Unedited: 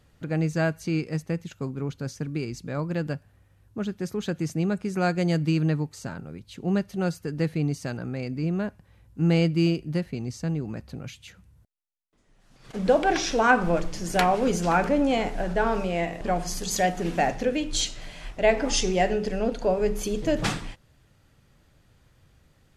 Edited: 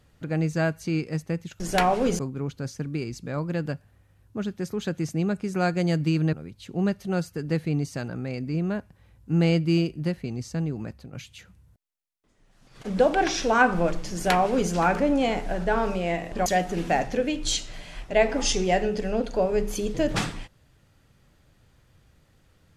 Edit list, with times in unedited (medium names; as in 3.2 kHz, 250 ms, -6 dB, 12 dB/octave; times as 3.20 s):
5.74–6.22 s: delete
10.76–11.02 s: fade out, to -9.5 dB
14.01–14.60 s: copy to 1.60 s
16.35–16.74 s: delete